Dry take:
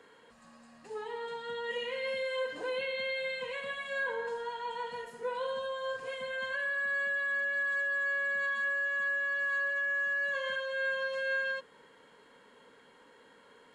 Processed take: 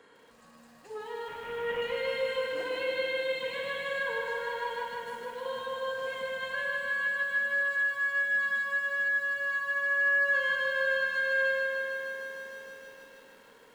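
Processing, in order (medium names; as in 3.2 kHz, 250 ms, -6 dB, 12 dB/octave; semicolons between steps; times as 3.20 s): 1.28–1.82 s: CVSD coder 16 kbps; 4.83–5.46 s: compression, threshold -39 dBFS, peak gain reduction 8.5 dB; feedback echo behind a low-pass 106 ms, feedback 55%, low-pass 770 Hz, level -4.5 dB; bit-crushed delay 153 ms, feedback 80%, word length 10-bit, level -5 dB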